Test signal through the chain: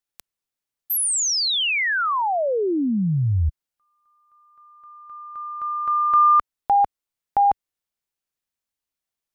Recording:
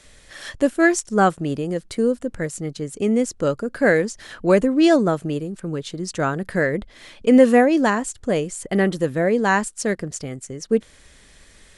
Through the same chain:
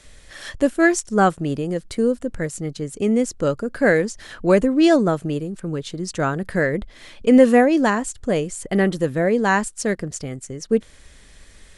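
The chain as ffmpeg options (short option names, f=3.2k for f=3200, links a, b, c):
-af "lowshelf=f=76:g=6.5"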